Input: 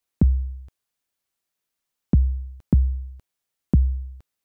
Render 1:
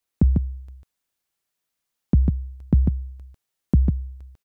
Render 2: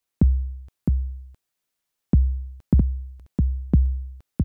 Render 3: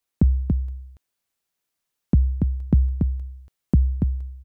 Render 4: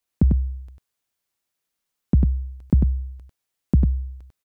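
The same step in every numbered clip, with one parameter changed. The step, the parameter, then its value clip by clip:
echo, time: 147, 661, 284, 97 ms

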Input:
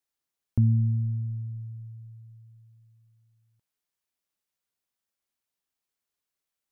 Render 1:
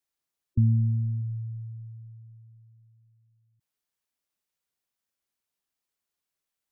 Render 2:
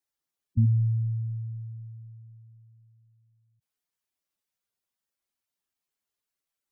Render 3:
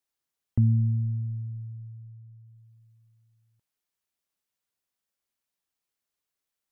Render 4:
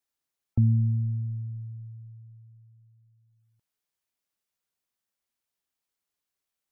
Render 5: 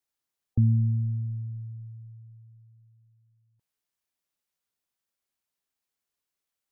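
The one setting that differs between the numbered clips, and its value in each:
spectral gate, under each frame's peak: -20, -10, -60, -45, -35 dB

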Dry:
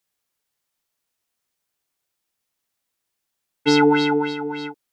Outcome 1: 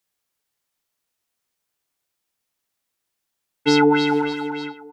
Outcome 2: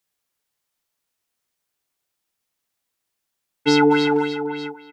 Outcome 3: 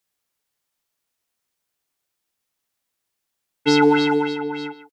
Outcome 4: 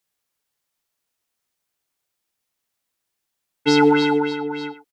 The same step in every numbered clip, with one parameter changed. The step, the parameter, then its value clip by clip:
speakerphone echo, time: 0.4, 0.24, 0.15, 0.1 s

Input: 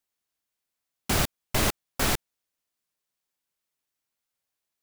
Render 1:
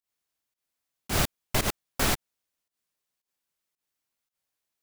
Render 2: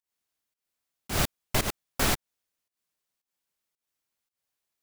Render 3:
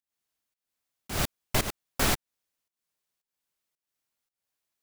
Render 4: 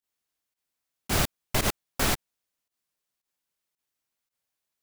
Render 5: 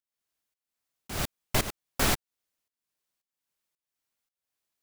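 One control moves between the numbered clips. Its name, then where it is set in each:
pump, release: 133, 197, 301, 83, 442 ms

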